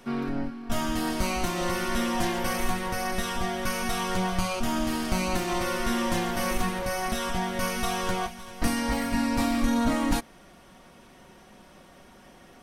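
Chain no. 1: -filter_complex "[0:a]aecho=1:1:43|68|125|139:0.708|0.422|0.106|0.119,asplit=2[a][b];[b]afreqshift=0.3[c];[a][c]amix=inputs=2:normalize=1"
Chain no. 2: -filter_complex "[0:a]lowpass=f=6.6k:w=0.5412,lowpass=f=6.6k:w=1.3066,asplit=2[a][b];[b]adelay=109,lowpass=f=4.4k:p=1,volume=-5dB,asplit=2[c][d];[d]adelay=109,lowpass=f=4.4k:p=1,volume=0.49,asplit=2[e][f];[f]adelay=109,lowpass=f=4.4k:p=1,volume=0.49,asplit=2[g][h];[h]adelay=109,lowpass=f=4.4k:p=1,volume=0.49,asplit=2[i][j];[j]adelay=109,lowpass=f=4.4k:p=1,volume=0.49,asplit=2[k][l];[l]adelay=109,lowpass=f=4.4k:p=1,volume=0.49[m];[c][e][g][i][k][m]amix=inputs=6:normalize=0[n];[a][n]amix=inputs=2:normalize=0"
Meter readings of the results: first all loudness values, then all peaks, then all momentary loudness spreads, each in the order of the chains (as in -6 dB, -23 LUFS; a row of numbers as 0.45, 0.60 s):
-27.0, -28.0 LUFS; -12.0, -12.5 dBFS; 9, 4 LU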